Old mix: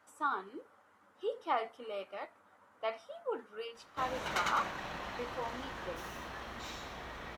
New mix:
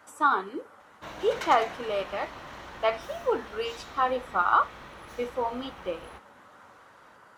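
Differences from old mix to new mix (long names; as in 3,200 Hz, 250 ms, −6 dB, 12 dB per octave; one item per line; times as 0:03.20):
speech +11.0 dB
background: entry −2.95 s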